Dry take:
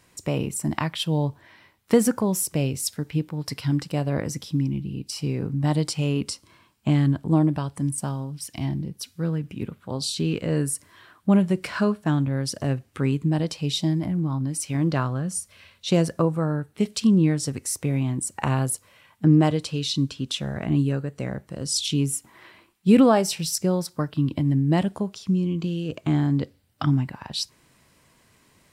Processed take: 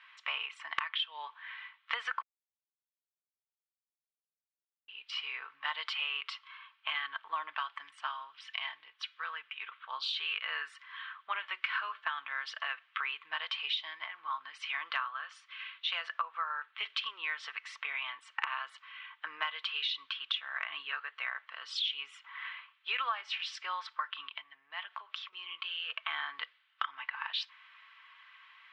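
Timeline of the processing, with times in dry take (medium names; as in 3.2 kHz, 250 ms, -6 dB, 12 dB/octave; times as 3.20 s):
2.22–4.88 s: mute
24.28–25.33 s: compression 3:1, threshold -33 dBFS
whole clip: elliptic band-pass 1.1–3.3 kHz, stop band 70 dB; comb 4.5 ms, depth 38%; compression 10:1, threshold -38 dBFS; trim +7.5 dB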